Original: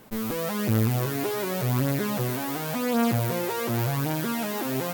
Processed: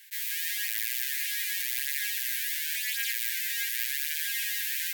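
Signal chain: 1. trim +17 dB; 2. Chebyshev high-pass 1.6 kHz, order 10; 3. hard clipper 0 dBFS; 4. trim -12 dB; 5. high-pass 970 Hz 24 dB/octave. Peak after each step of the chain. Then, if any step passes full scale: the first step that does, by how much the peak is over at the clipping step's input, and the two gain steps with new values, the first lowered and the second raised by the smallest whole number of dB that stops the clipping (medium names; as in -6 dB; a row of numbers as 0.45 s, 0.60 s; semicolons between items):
+5.5 dBFS, +3.5 dBFS, 0.0 dBFS, -12.0 dBFS, -11.0 dBFS; step 1, 3.5 dB; step 1 +13 dB, step 4 -8 dB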